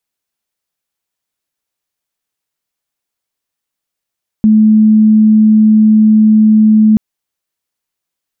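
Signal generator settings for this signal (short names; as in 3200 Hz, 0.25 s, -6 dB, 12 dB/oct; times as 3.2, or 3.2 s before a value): tone sine 216 Hz -3.5 dBFS 2.53 s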